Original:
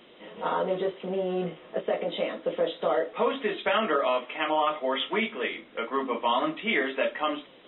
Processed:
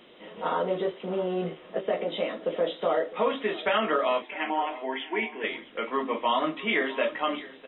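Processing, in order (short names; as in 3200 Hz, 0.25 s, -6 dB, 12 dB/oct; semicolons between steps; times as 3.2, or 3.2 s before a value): 4.22–5.44 fixed phaser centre 830 Hz, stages 8; echo 0.655 s -17.5 dB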